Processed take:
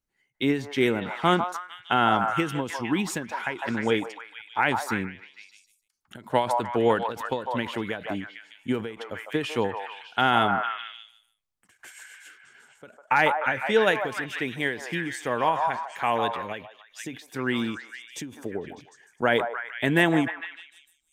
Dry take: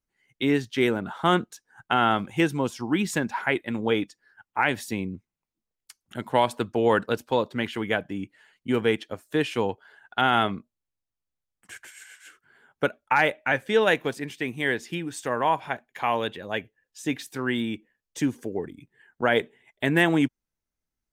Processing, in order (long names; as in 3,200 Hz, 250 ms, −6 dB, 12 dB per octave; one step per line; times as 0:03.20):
echo through a band-pass that steps 151 ms, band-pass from 880 Hz, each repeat 0.7 octaves, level −2.5 dB
every ending faded ahead of time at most 130 dB per second